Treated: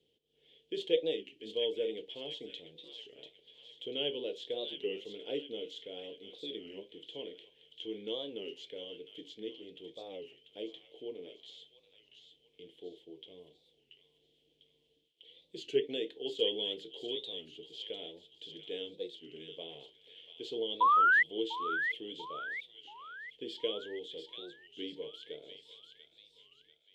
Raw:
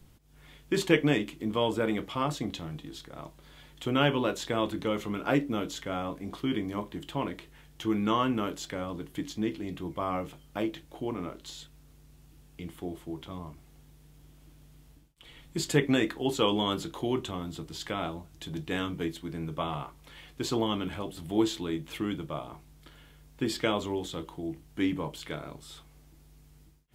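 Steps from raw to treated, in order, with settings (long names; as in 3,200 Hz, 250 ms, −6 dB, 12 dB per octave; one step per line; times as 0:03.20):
pair of resonant band-passes 1,200 Hz, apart 2.8 octaves
sound drawn into the spectrogram rise, 0:20.81–0:21.23, 870–2,100 Hz −24 dBFS
delay with a high-pass on its return 691 ms, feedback 46%, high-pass 1,500 Hz, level −6.5 dB
wow of a warped record 33 1/3 rpm, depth 160 cents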